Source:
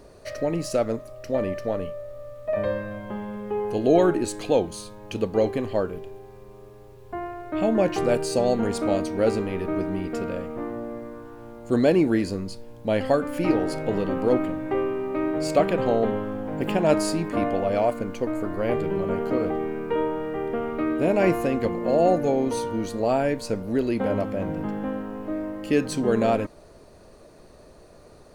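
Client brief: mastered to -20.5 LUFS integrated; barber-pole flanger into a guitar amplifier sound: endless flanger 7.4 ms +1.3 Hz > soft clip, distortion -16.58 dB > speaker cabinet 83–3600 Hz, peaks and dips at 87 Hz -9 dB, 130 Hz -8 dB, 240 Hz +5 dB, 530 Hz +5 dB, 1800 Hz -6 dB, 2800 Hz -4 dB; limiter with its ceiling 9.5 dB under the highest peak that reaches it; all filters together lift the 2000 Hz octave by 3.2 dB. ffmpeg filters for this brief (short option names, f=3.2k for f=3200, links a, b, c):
-filter_complex "[0:a]equalizer=f=2k:t=o:g=8.5,alimiter=limit=-15dB:level=0:latency=1,asplit=2[a][b];[b]adelay=7.4,afreqshift=1.3[c];[a][c]amix=inputs=2:normalize=1,asoftclip=threshold=-21.5dB,highpass=83,equalizer=f=87:t=q:w=4:g=-9,equalizer=f=130:t=q:w=4:g=-8,equalizer=f=240:t=q:w=4:g=5,equalizer=f=530:t=q:w=4:g=5,equalizer=f=1.8k:t=q:w=4:g=-6,equalizer=f=2.8k:t=q:w=4:g=-4,lowpass=f=3.6k:w=0.5412,lowpass=f=3.6k:w=1.3066,volume=9dB"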